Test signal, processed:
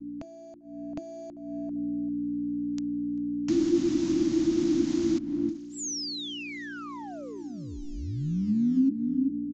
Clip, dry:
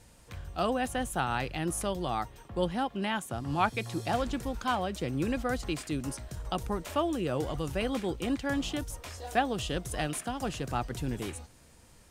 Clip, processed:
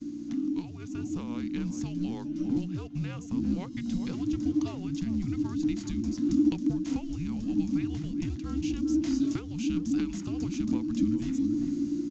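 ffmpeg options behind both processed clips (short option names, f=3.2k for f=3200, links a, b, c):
-filter_complex "[0:a]acrusher=bits=5:mode=log:mix=0:aa=0.000001,asplit=2[a][b];[b]adelay=393,lowpass=f=1.1k:p=1,volume=-13dB,asplit=2[c][d];[d]adelay=393,lowpass=f=1.1k:p=1,volume=0.17[e];[c][e]amix=inputs=2:normalize=0[f];[a][f]amix=inputs=2:normalize=0,aeval=exprs='val(0)+0.00251*(sin(2*PI*60*n/s)+sin(2*PI*2*60*n/s)/2+sin(2*PI*3*60*n/s)/3+sin(2*PI*4*60*n/s)/4+sin(2*PI*5*60*n/s)/5)':c=same,bandreject=f=50:t=h:w=6,bandreject=f=100:t=h:w=6,bandreject=f=150:t=h:w=6,acompressor=threshold=-43dB:ratio=8,aeval=exprs='0.0944*(cos(1*acos(clip(val(0)/0.0944,-1,1)))-cos(1*PI/2))+0.00168*(cos(4*acos(clip(val(0)/0.0944,-1,1)))-cos(4*PI/2))+0.00473*(cos(7*acos(clip(val(0)/0.0944,-1,1)))-cos(7*PI/2))':c=same,dynaudnorm=f=110:g=17:m=7dB,aresample=16000,aresample=44100,bass=f=250:g=14,treble=f=4k:g=10,agate=range=-16dB:threshold=-51dB:ratio=16:detection=peak,lowshelf=f=130:g=10.5,afreqshift=-350,volume=-1.5dB"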